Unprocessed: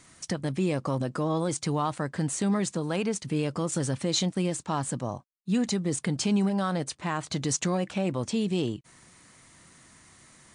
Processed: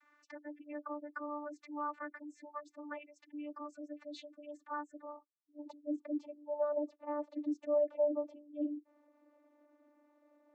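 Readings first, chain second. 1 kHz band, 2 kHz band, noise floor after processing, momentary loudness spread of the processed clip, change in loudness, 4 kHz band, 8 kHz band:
-10.5 dB, -12.5 dB, -73 dBFS, 17 LU, -11.0 dB, -27.0 dB, under -35 dB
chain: spectral gate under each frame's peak -20 dB strong; band-pass sweep 1.5 kHz -> 570 Hz, 5.15–5.94 s; vocoder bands 32, saw 295 Hz; trim +2 dB

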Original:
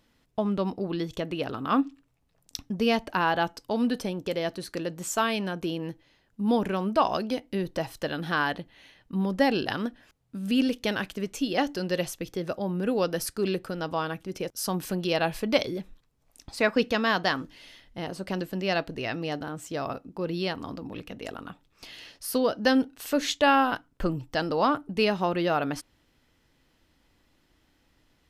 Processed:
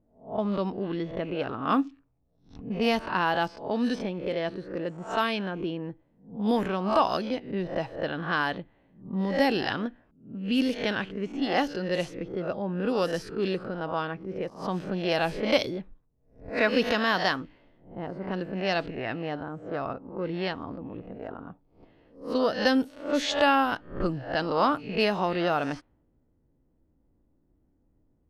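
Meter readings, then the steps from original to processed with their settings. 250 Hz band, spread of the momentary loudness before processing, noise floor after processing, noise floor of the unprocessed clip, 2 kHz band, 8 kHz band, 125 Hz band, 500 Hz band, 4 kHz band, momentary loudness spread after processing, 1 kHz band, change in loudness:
-1.0 dB, 13 LU, -68 dBFS, -68 dBFS, +0.5 dB, -9.5 dB, -1.0 dB, 0.0 dB, -0.5 dB, 12 LU, 0.0 dB, 0.0 dB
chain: reverse spectral sustain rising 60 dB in 0.44 s; level-controlled noise filter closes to 440 Hz, open at -19 dBFS; trim -1.5 dB

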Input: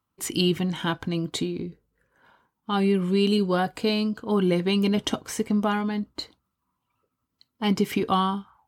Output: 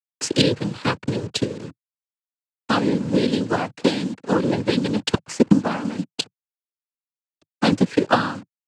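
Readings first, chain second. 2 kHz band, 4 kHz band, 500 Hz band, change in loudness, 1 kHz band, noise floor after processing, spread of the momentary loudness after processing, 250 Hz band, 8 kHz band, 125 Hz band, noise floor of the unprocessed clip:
+5.5 dB, +3.0 dB, +3.0 dB, +3.0 dB, +2.5 dB, under -85 dBFS, 9 LU, +3.0 dB, +3.5 dB, +2.5 dB, -81 dBFS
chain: send-on-delta sampling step -35 dBFS; transient shaper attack +11 dB, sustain -2 dB; noise-vocoded speech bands 8

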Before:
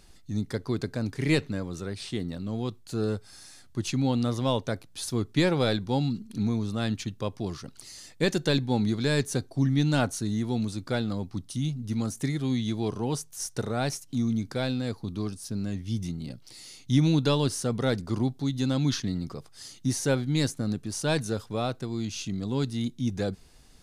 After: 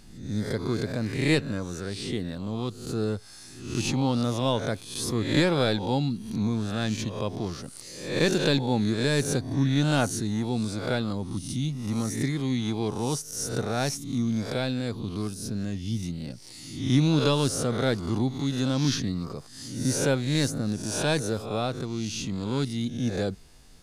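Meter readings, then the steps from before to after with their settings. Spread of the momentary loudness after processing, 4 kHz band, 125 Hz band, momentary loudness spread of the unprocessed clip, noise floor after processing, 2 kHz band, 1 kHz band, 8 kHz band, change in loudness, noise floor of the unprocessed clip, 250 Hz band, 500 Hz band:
9 LU, +3.0 dB, +0.5 dB, 10 LU, -46 dBFS, +3.0 dB, +2.5 dB, +3.5 dB, +1.5 dB, -53 dBFS, +1.0 dB, +2.0 dB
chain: reverse spectral sustain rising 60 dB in 0.65 s

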